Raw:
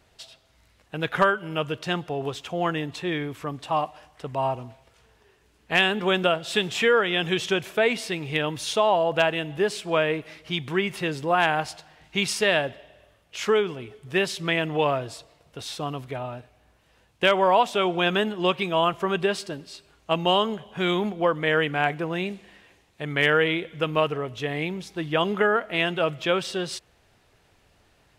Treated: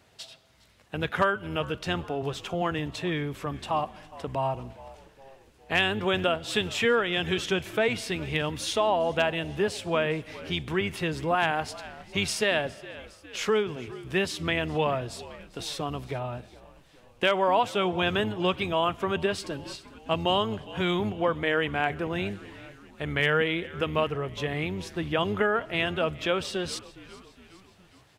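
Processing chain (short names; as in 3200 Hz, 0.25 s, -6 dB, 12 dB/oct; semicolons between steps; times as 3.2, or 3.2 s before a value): octaver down 1 oct, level -4 dB; HPF 80 Hz; frequency-shifting echo 0.411 s, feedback 55%, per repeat -64 Hz, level -22 dB; in parallel at +1 dB: compressor, threshold -32 dBFS, peak gain reduction 16.5 dB; on the sum: gain -5.5 dB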